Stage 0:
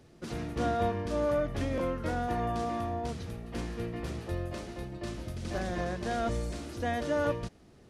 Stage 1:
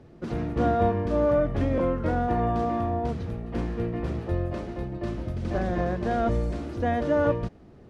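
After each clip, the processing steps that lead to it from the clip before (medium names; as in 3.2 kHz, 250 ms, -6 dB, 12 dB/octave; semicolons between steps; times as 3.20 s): low-pass 1.1 kHz 6 dB/octave; trim +7.5 dB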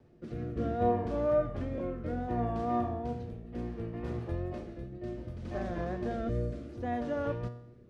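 rotary cabinet horn 0.65 Hz; wow and flutter 46 cents; feedback comb 120 Hz, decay 0.71 s, harmonics all, mix 70%; trim +1.5 dB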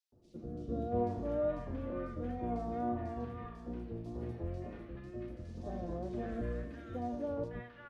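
flange 1 Hz, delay 3.1 ms, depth 1.3 ms, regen -70%; three bands offset in time highs, lows, mids 120/680 ms, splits 1.1/3.6 kHz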